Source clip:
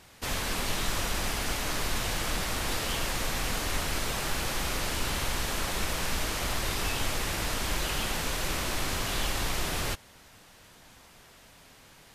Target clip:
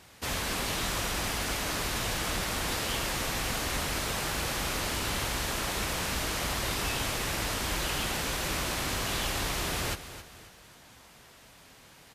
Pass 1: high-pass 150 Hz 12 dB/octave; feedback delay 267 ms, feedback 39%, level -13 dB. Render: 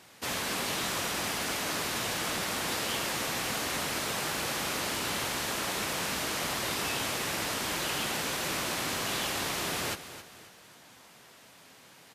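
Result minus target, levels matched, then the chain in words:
125 Hz band -6.0 dB
high-pass 40 Hz 12 dB/octave; feedback delay 267 ms, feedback 39%, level -13 dB

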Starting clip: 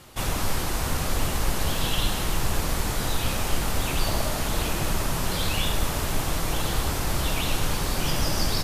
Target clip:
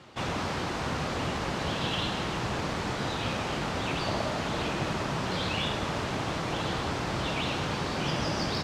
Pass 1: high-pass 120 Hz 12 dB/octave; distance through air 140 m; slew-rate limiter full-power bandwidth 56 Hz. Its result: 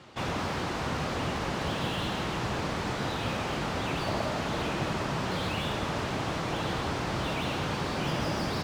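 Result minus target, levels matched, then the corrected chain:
slew-rate limiter: distortion +32 dB
high-pass 120 Hz 12 dB/octave; distance through air 140 m; slew-rate limiter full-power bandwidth 199 Hz

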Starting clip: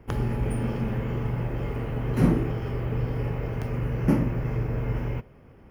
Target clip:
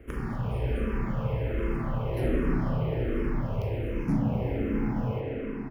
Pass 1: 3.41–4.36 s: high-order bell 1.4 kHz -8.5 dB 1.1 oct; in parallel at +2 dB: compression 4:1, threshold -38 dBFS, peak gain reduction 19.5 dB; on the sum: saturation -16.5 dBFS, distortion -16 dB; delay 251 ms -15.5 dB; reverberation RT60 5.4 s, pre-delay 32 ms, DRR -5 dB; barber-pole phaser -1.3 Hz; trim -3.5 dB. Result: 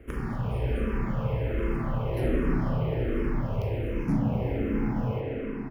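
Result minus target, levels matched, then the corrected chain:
compression: peak gain reduction -5.5 dB
3.41–4.36 s: high-order bell 1.4 kHz -8.5 dB 1.1 oct; in parallel at +2 dB: compression 4:1, threshold -45 dBFS, peak gain reduction 24.5 dB; on the sum: saturation -16.5 dBFS, distortion -16 dB; delay 251 ms -15.5 dB; reverberation RT60 5.4 s, pre-delay 32 ms, DRR -5 dB; barber-pole phaser -1.3 Hz; trim -3.5 dB

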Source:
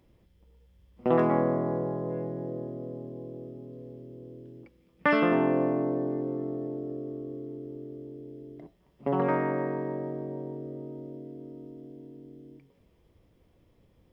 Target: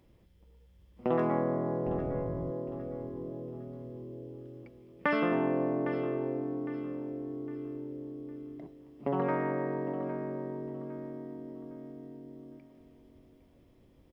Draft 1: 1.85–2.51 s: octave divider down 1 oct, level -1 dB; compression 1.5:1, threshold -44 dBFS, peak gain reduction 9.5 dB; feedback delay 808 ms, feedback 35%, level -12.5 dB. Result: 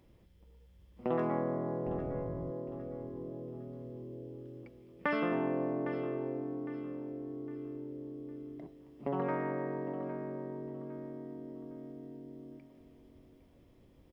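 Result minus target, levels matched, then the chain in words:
compression: peak gain reduction +3.5 dB
1.85–2.51 s: octave divider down 1 oct, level -1 dB; compression 1.5:1, threshold -33 dBFS, peak gain reduction 5.5 dB; feedback delay 808 ms, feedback 35%, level -12.5 dB

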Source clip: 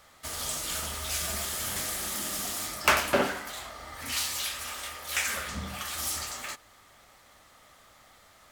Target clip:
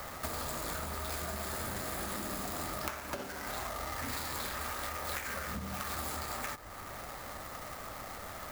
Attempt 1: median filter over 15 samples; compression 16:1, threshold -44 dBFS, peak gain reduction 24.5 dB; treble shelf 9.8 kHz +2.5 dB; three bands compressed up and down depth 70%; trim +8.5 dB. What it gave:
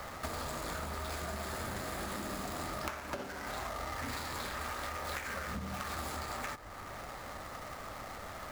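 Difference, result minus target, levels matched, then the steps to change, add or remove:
8 kHz band -2.5 dB
change: treble shelf 9.8 kHz +13.5 dB

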